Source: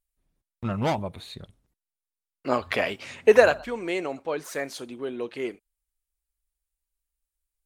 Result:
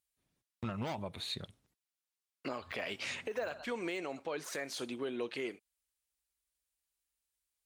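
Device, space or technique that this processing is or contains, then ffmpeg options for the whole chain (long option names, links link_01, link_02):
broadcast voice chain: -af "highpass=84,deesser=0.9,acompressor=threshold=-27dB:ratio=4,equalizer=frequency=4100:width_type=o:width=2.9:gain=6,alimiter=level_in=1dB:limit=-24dB:level=0:latency=1:release=251,volume=-1dB,volume=-2.5dB"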